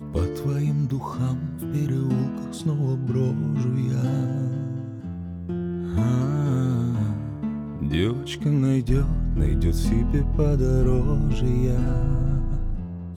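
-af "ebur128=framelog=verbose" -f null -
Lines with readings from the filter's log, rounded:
Integrated loudness:
  I:         -24.7 LUFS
  Threshold: -34.7 LUFS
Loudness range:
  LRA:         3.2 LU
  Threshold: -44.5 LUFS
  LRA low:   -26.0 LUFS
  LRA high:  -22.8 LUFS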